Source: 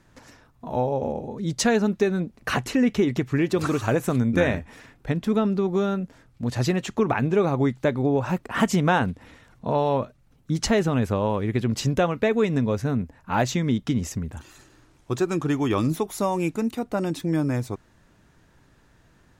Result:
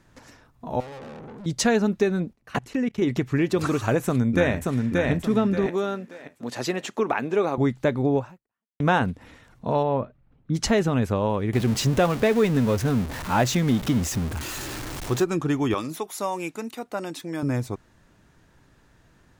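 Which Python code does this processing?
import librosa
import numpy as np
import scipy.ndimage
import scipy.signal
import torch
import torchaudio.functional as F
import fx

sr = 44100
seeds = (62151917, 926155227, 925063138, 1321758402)

y = fx.tube_stage(x, sr, drive_db=38.0, bias=0.55, at=(0.8, 1.46))
y = fx.level_steps(y, sr, step_db=23, at=(2.33, 3.02))
y = fx.echo_throw(y, sr, start_s=4.03, length_s=1.08, ms=580, feedback_pct=35, wet_db=-2.5)
y = fx.highpass(y, sr, hz=300.0, slope=12, at=(5.66, 7.58))
y = fx.air_absorb(y, sr, metres=410.0, at=(9.82, 10.53), fade=0.02)
y = fx.zero_step(y, sr, step_db=-28.0, at=(11.53, 15.24))
y = fx.highpass(y, sr, hz=640.0, slope=6, at=(15.74, 17.43))
y = fx.edit(y, sr, fx.fade_out_span(start_s=8.18, length_s=0.62, curve='exp'), tone=tone)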